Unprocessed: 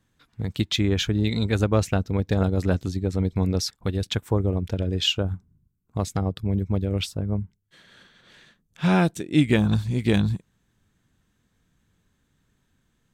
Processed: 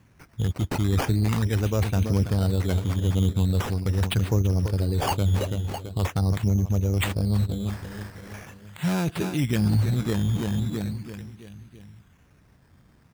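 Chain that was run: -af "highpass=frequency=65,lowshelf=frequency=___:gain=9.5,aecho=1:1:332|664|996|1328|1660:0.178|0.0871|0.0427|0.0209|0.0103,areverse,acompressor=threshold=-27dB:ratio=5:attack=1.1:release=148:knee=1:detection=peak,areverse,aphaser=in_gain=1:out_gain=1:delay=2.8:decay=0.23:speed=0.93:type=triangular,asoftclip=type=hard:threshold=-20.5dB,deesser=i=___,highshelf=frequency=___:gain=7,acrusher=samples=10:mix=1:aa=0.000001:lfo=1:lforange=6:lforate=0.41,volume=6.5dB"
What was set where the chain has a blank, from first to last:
160, 0.9, 3600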